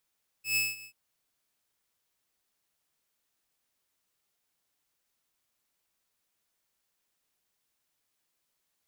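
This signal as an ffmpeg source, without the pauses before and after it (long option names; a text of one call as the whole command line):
ffmpeg -f lavfi -i "aevalsrc='0.0841*(2*mod(2600*t,1)-1)':duration=0.486:sample_rate=44100,afade=type=in:duration=0.122,afade=type=out:start_time=0.122:duration=0.194:silence=0.1,afade=type=out:start_time=0.4:duration=0.086" out.wav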